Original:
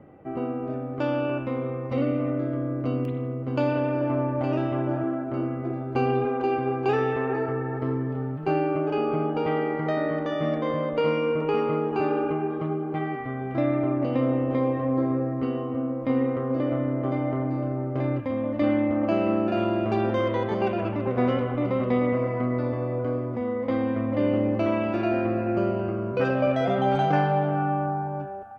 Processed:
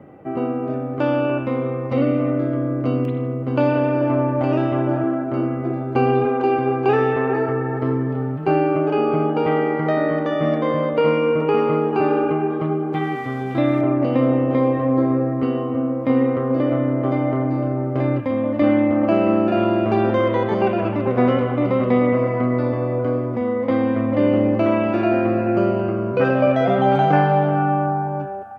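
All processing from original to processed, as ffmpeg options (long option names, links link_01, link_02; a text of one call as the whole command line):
ffmpeg -i in.wav -filter_complex "[0:a]asettb=1/sr,asplit=3[link_01][link_02][link_03];[link_01]atrim=end=12.934[link_04];[link_02]atrim=start=12.93:end=13.81,asetpts=PTS-STARTPTS,afade=type=in:duration=0.004:curve=qsin,afade=type=out:start_time=0.876:duration=0.004:curve=qsin,equalizer=frequency=3700:width_type=o:width=0.65:gain=11.5,bandreject=frequency=630:width=10,aeval=exprs='sgn(val(0))*max(abs(val(0))-0.002,0)':channel_layout=same[link_05];[link_03]atrim=start=13.806[link_06];[link_04][link_05]acrossfade=duration=0.004:curve1=hsin:curve2=qsin[link_07];[link_07][link_06]acrossfade=duration=0.004:curve1=qsin:curve2=hsin,acrossover=split=3000[link_08][link_09];[link_09]acompressor=threshold=-53dB:ratio=4:attack=1:release=60[link_10];[link_08][link_10]amix=inputs=2:normalize=0,highpass=89,volume=6.5dB" out.wav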